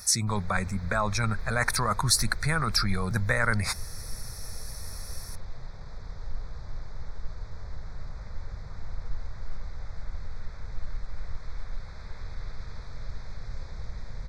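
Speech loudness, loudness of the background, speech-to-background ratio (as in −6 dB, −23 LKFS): −27.0 LKFS, −43.0 LKFS, 16.0 dB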